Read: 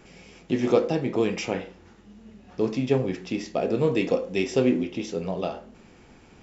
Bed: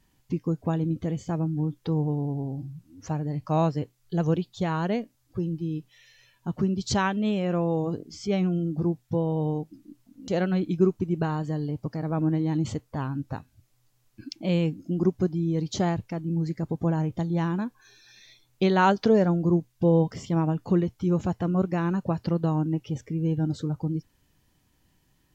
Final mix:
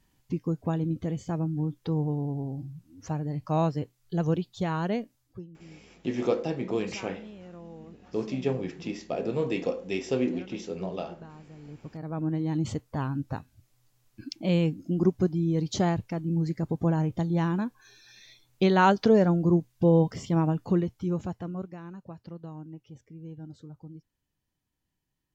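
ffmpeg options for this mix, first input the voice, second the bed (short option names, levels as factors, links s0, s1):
-filter_complex "[0:a]adelay=5550,volume=0.531[s0];[1:a]volume=7.94,afade=t=out:st=5.14:d=0.33:silence=0.125893,afade=t=in:st=11.56:d=1.33:silence=0.1,afade=t=out:st=20.43:d=1.35:silence=0.149624[s1];[s0][s1]amix=inputs=2:normalize=0"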